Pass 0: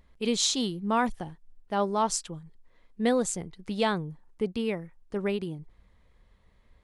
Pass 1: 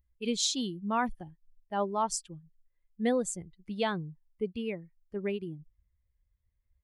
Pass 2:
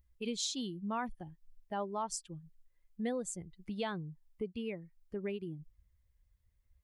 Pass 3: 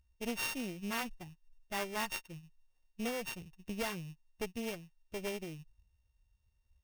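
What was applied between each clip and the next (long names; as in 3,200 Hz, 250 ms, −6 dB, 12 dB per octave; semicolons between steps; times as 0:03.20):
spectral dynamics exaggerated over time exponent 1.5; level −2 dB
downward compressor 2 to 1, threshold −46 dBFS, peak gain reduction 12.5 dB; level +3.5 dB
samples sorted by size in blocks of 16 samples; harmonic generator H 6 −15 dB, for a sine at −21.5 dBFS; bad sample-rate conversion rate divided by 3×, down none, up hold; level −1 dB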